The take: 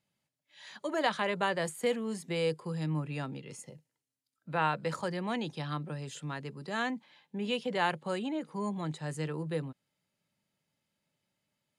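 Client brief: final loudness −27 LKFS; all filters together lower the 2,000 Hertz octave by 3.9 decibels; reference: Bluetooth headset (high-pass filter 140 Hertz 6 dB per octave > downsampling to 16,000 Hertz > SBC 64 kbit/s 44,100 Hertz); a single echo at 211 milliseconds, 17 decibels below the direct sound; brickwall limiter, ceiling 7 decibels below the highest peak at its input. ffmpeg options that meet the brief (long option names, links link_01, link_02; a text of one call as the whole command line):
ffmpeg -i in.wav -af "equalizer=frequency=2000:width_type=o:gain=-5,alimiter=level_in=1dB:limit=-24dB:level=0:latency=1,volume=-1dB,highpass=frequency=140:poles=1,aecho=1:1:211:0.141,aresample=16000,aresample=44100,volume=10.5dB" -ar 44100 -c:a sbc -b:a 64k out.sbc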